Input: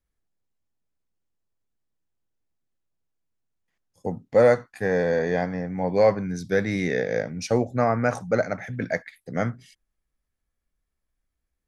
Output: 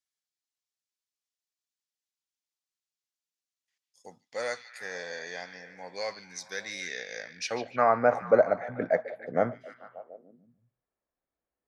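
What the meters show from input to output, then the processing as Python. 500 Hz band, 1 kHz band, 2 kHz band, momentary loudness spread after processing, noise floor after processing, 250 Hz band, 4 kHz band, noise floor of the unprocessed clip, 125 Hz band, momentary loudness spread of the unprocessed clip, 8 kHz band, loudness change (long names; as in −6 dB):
−6.0 dB, −1.0 dB, −5.0 dB, 22 LU, below −85 dBFS, −12.0 dB, +1.0 dB, −81 dBFS, −16.0 dB, 11 LU, −0.5 dB, −5.5 dB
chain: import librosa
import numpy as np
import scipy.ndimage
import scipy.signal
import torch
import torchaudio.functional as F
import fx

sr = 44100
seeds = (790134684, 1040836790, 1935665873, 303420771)

y = fx.filter_sweep_bandpass(x, sr, from_hz=5500.0, to_hz=620.0, start_s=7.16, end_s=8.13, q=1.1)
y = fx.echo_stepped(y, sr, ms=146, hz=3300.0, octaves=-0.7, feedback_pct=70, wet_db=-8)
y = y * librosa.db_to_amplitude(3.5)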